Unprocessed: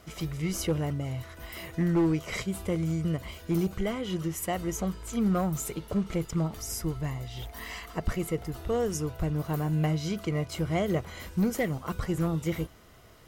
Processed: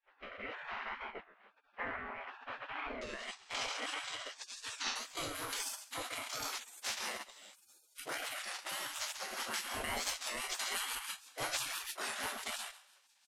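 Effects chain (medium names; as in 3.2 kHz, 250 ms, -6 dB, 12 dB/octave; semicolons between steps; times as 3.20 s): spectral sustain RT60 0.49 s; careless resampling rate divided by 4×, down none, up hold; bass shelf 150 Hz +8.5 dB; feedback delay 136 ms, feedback 45%, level -6 dB; peak limiter -18.5 dBFS, peak gain reduction 8.5 dB; gate -27 dBFS, range -14 dB; rotary cabinet horn 1 Hz, later 6 Hz, at 8.67 s; spectral gate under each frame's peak -30 dB weak; low-pass 2.2 kHz 24 dB/octave, from 3.03 s 7.1 kHz, from 4.96 s 12 kHz; warped record 33 1/3 rpm, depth 160 cents; trim +9 dB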